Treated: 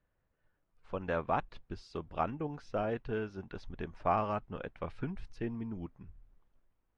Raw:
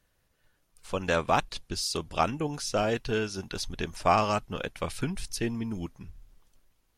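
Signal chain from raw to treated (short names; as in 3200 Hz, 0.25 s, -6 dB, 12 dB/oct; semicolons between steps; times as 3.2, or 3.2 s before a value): LPF 1700 Hz 12 dB/oct; gain -6.5 dB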